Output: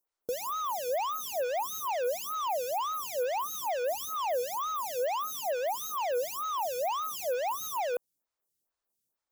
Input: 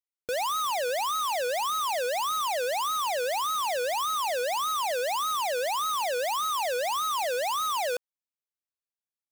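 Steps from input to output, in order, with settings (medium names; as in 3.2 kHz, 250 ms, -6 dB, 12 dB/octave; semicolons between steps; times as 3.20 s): peaking EQ 2.6 kHz -10 dB 1.5 oct; in parallel at -10 dB: sine folder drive 19 dB, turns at -28 dBFS; on the sum: lamp-driven phase shifter 2.2 Hz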